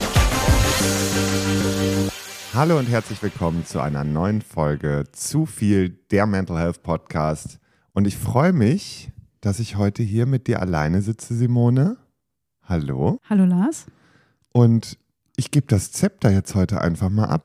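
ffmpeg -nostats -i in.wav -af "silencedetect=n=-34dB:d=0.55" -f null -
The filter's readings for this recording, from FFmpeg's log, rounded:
silence_start: 11.94
silence_end: 12.70 | silence_duration: 0.75
silence_start: 13.88
silence_end: 14.55 | silence_duration: 0.67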